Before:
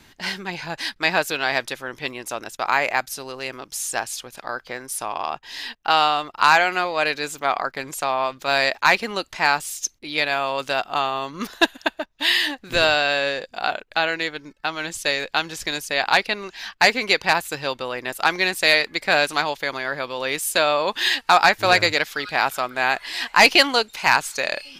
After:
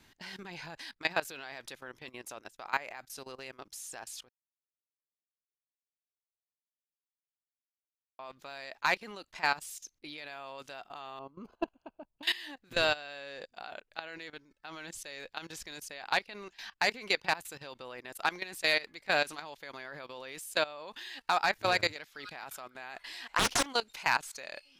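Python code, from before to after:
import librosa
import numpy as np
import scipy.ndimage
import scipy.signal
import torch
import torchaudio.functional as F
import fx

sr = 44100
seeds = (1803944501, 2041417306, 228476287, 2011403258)

y = fx.moving_average(x, sr, points=24, at=(11.19, 12.23))
y = fx.doppler_dist(y, sr, depth_ms=0.97, at=(23.26, 23.66))
y = fx.edit(y, sr, fx.silence(start_s=4.29, length_s=3.9), tone=tone)
y = fx.level_steps(y, sr, step_db=18)
y = y * 10.0 ** (-8.5 / 20.0)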